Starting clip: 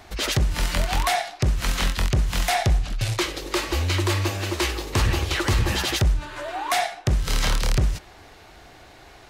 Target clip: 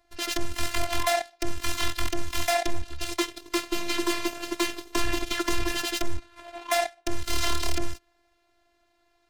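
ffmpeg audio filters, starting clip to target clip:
-af "aeval=exprs='0.251*(cos(1*acos(clip(val(0)/0.251,-1,1)))-cos(1*PI/2))+0.0316*(cos(7*acos(clip(val(0)/0.251,-1,1)))-cos(7*PI/2))':c=same,afftfilt=real='hypot(re,im)*cos(PI*b)':imag='0':win_size=512:overlap=0.75"

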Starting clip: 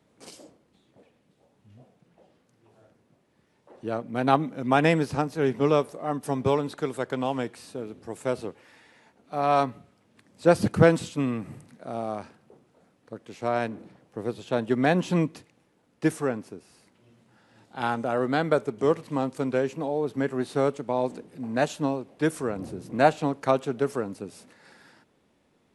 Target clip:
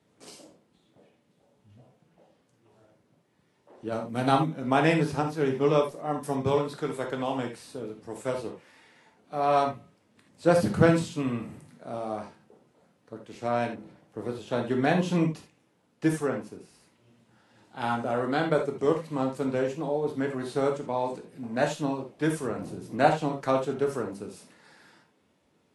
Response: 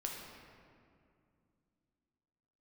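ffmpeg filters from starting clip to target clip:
-filter_complex "[0:a]asettb=1/sr,asplit=3[a][b][c];[a]atrim=end=3.924[d];[b]atrim=start=3.92:end=4.46,asetpts=PTS-STARTPTS,afade=t=in:d=0.004:c=qsin,afade=t=out:st=0.536:d=0.004:c=qsin,bass=f=250:g=4,treble=f=4k:g=9[e];[c]atrim=start=4.456[f];[d][e]acrossfade=d=0.004:c1=hsin:c2=qsin[g];[g][f]acrossfade=d=0.004:c1=qsin:c2=hsin[h];[1:a]atrim=start_sample=2205,atrim=end_sample=3969[i];[h][i]afir=irnorm=-1:irlink=0" -ar 44100 -c:a libvorbis -b:a 48k

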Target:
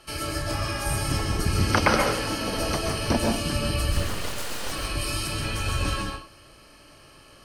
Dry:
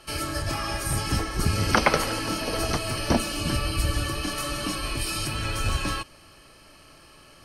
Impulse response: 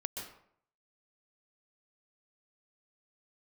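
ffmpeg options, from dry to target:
-filter_complex "[0:a]asettb=1/sr,asplit=3[a][b][c];[a]atrim=end=3.924[d];[b]atrim=start=3.92:end=4.72,asetpts=PTS-STARTPTS,afade=t=in:d=0.004:c=qsin,afade=t=out:st=0.796:d=0.004:c=qsin,aeval=exprs='abs(val(0))':c=same[e];[c]atrim=start=4.716[f];[d][e]acrossfade=d=0.004:c1=hsin:c2=qsin[g];[g][f]acrossfade=d=0.004:c1=qsin:c2=hsin[h];[1:a]atrim=start_sample=2205,afade=t=out:st=0.3:d=0.01,atrim=end_sample=13671[i];[h][i]afir=irnorm=-1:irlink=0"

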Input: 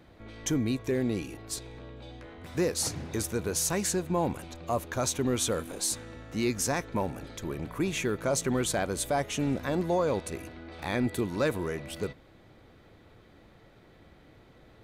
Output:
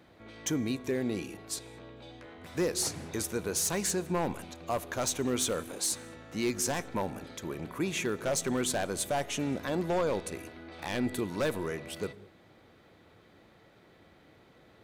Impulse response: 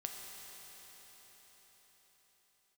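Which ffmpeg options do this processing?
-filter_complex "[0:a]highpass=f=330:p=1,aeval=exprs='0.0794*(abs(mod(val(0)/0.0794+3,4)-2)-1)':c=same,asplit=2[a][b];[b]lowshelf=f=420:g=9.5[c];[1:a]atrim=start_sample=2205,afade=t=out:st=0.27:d=0.01,atrim=end_sample=12348,lowshelf=f=370:g=10.5[d];[c][d]afir=irnorm=-1:irlink=0,volume=-15dB[e];[a][e]amix=inputs=2:normalize=0,volume=-1.5dB"

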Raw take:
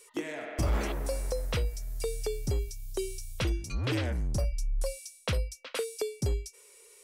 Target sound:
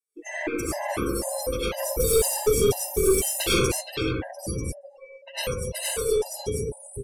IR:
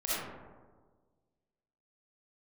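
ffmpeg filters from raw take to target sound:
-filter_complex "[1:a]atrim=start_sample=2205,asetrate=27783,aresample=44100[a];[0:a][a]afir=irnorm=-1:irlink=0,dynaudnorm=f=160:g=3:m=15dB,aemphasis=mode=production:type=bsi,asplit=2[b][c];[c]adelay=548.1,volume=-11dB,highshelf=f=4k:g=-12.3[d];[b][d]amix=inputs=2:normalize=0,asplit=3[e][f][g];[e]afade=t=out:st=1.77:d=0.02[h];[f]acontrast=88,afade=t=in:st=1.77:d=0.02,afade=t=out:st=3.8:d=0.02[i];[g]afade=t=in:st=3.8:d=0.02[j];[h][i][j]amix=inputs=3:normalize=0,asplit=3[k][l][m];[k]afade=t=out:st=4.73:d=0.02[n];[l]highpass=760,lowpass=2.7k,afade=t=in:st=4.73:d=0.02,afade=t=out:st=5.36:d=0.02[o];[m]afade=t=in:st=5.36:d=0.02[p];[n][o][p]amix=inputs=3:normalize=0,afftdn=nr=35:nf=-23,aeval=exprs='(tanh(2*val(0)+0.35)-tanh(0.35))/2':c=same,afftfilt=real='re*gt(sin(2*PI*2*pts/sr)*(1-2*mod(floor(b*sr/1024/530),2)),0)':imag='im*gt(sin(2*PI*2*pts/sr)*(1-2*mod(floor(b*sr/1024/530),2)),0)':win_size=1024:overlap=0.75,volume=-6.5dB"

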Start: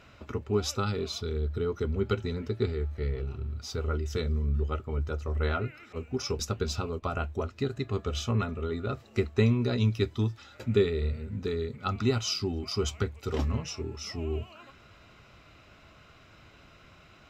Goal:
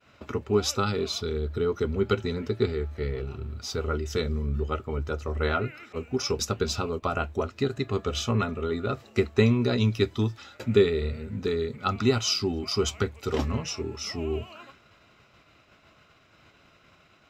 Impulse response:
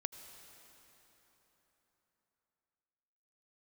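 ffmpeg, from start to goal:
-af "agate=range=-33dB:threshold=-48dB:ratio=3:detection=peak,lowshelf=f=83:g=-11.5,volume=5dB"

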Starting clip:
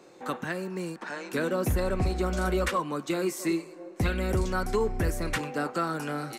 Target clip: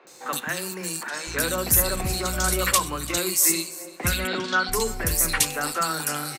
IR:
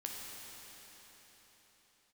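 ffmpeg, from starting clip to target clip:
-filter_complex "[0:a]asplit=2[a][b];[b]aecho=0:1:339:0.1[c];[a][c]amix=inputs=2:normalize=0,asettb=1/sr,asplit=3[d][e][f];[d]atrim=end=1.234[g];[e]atrim=start=1.23:end=3.14,asetpts=PTS-STARTPTS,afade=t=in:d=0.004:c=qsin,afade=t=out:st=1.906:d=0.004:c=qsin,aeval=exprs='val(0)+0.0158*(sin(2*PI*60*n/s)+sin(2*PI*2*60*n/s)/2+sin(2*PI*3*60*n/s)/3+sin(2*PI*4*60*n/s)/4+sin(2*PI*5*60*n/s)/5)':c=same[h];[f]atrim=start=3.136[i];[g][h]acrossfade=d=0.004:c1=hsin:c2=qsin[j];[j][i]acrossfade=d=0.004:c1=qsin:c2=hsin,asettb=1/sr,asplit=3[k][l][m];[k]atrim=end=4.204[n];[l]atrim=start=4.2:end=4.65,asetpts=PTS-STARTPTS,afade=t=in:d=0.004:c=qsin,afade=t=out:st=0.446:d=0.004:c=qsin,highpass=f=190:w=0.5412,highpass=f=190:w=1.3066,equalizer=f=260:t=q:w=4:g=7,equalizer=f=1.5k:t=q:w=4:g=7,equalizer=f=3.4k:t=q:w=4:g=8,lowpass=f=4.5k:w=0.5412,lowpass=f=4.5k:w=1.3066[o];[m]atrim=start=4.646[p];[n][o]acrossfade=d=0.004:c1=hsin:c2=qsin[q];[q][p]acrossfade=d=0.004:c1=qsin:c2=hsin,acrossover=split=330|2500[r][s][t];[r]adelay=40[u];[t]adelay=70[v];[u][s][v]amix=inputs=3:normalize=0,acrossover=split=420[w][x];[x]crystalizer=i=8.5:c=0[y];[w][y]amix=inputs=2:normalize=0"

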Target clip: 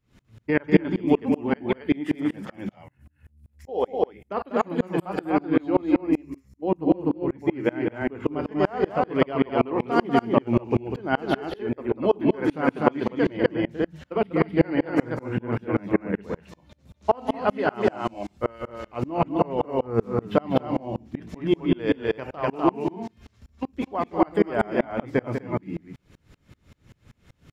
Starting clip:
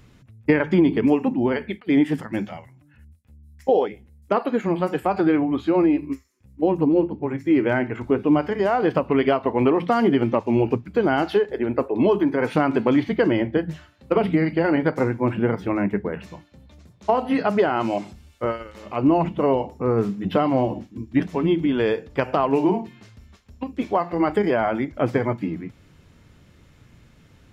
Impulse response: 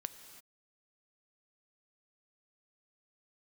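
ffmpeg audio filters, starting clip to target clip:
-filter_complex "[0:a]asplit=2[a][b];[b]aecho=0:1:195.3|247.8:0.398|0.794[c];[a][c]amix=inputs=2:normalize=0,aeval=exprs='val(0)*pow(10,-32*if(lt(mod(-5.2*n/s,1),2*abs(-5.2)/1000),1-mod(-5.2*n/s,1)/(2*abs(-5.2)/1000),(mod(-5.2*n/s,1)-2*abs(-5.2)/1000)/(1-2*abs(-5.2)/1000))/20)':c=same,volume=3dB"

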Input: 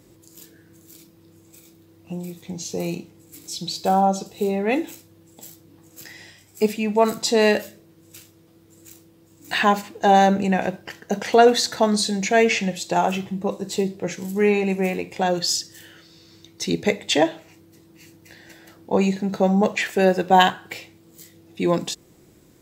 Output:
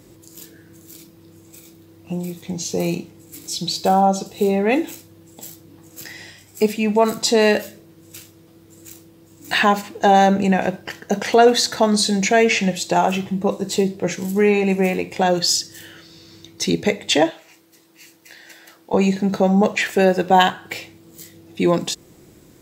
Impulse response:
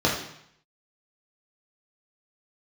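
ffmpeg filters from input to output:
-filter_complex "[0:a]asettb=1/sr,asplit=3[a][b][c];[a]atrim=end=17.304[d];[b]atrim=start=17.3:end=18.94,asetpts=PTS-STARTPTS,afade=t=in:d=0.004:c=qsin,afade=t=out:st=1.636:d=0.004:c=qsin,highpass=f=900:p=1[e];[c]atrim=start=18.936[f];[d][e]acrossfade=d=0.004:c1=hsin:c2=qsin[g];[g][f]acrossfade=d=0.004:c1=qsin:c2=hsin,asplit=2[h][i];[i]alimiter=limit=-13dB:level=0:latency=1:release=308,volume=3dB[j];[h][j]amix=inputs=2:normalize=0,volume=-2.5dB"

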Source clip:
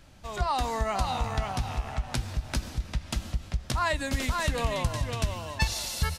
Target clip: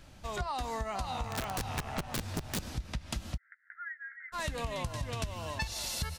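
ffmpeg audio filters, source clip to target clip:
-filter_complex "[0:a]asettb=1/sr,asplit=3[a][b][c];[a]atrim=end=1.284[d];[b]atrim=start=1.28:end=2.72,asetpts=PTS-STARTPTS,afade=t=in:d=0.004:c=qsin,afade=t=out:st=1.436:d=0.004:c=qsin,aeval=exprs='(mod(13.3*val(0)+1,2)-1)/13.3':c=same[e];[c]atrim=start=2.716[f];[d][e]acrossfade=d=0.004:c1=hsin:c2=qsin[g];[g][f]acrossfade=d=0.004:c1=qsin:c2=hsin,acompressor=threshold=-32dB:ratio=6,asplit=3[h][i][j];[h]afade=t=out:st=3.36:d=0.02[k];[i]asuperpass=centerf=1700:order=12:qfactor=2.5,afade=t=in:st=3.36:d=0.02,afade=t=out:st=4.32:d=0.02[l];[j]afade=t=in:st=4.32:d=0.02[m];[k][l][m]amix=inputs=3:normalize=0"

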